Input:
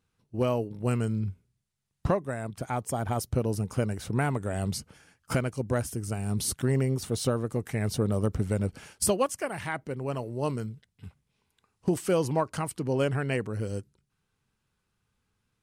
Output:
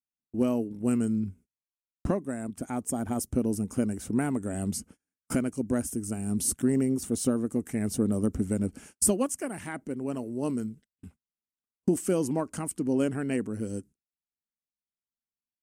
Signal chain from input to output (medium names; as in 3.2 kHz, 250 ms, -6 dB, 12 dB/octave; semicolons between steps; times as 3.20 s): gate -48 dBFS, range -31 dB; graphic EQ 125/250/500/1000/2000/4000/8000 Hz -10/+10/-4/-6/-3/-10/+6 dB